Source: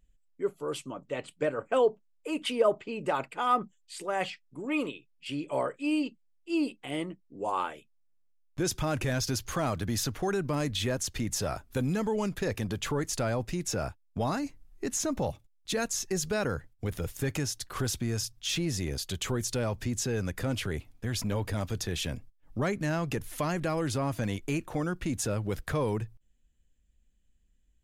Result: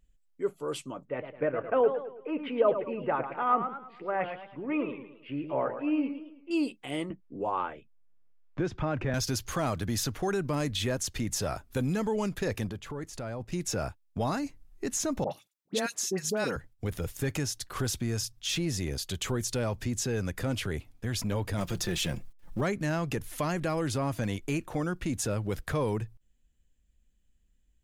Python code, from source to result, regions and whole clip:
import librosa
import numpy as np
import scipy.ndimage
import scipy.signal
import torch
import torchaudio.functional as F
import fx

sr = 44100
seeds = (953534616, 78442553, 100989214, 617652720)

y = fx.chain(x, sr, fx.lowpass(hz=2200.0, slope=24),
    fx.echo_warbled(ms=109, feedback_pct=42, rate_hz=2.8, cents=162, wet_db=-9), at=(1.05, 6.51))
y = fx.chain(y, sr, fx.lowpass(hz=2100.0, slope=12),
    fx.band_squash(depth_pct=40), at=(7.1, 9.14))
y = fx.chain(y, sr, fx.high_shelf(hz=2700.0, db=-6.5),
    fx.level_steps(step_db=9), at=(12.69, 13.52))
y = fx.chain(y, sr, fx.highpass(hz=160.0, slope=24),
    fx.dispersion(late='highs', ms=73.0, hz=1300.0), at=(15.24, 16.56))
y = fx.chain(y, sr, fx.law_mismatch(coded='mu'),
    fx.comb(ms=5.7, depth=0.57), at=(21.58, 22.61))